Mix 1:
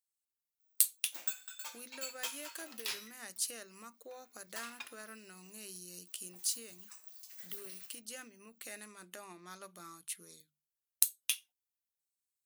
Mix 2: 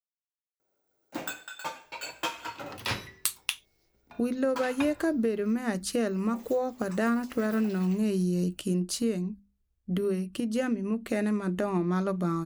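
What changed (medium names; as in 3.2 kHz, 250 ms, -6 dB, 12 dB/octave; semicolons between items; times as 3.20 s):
speech: entry +2.45 s; master: remove differentiator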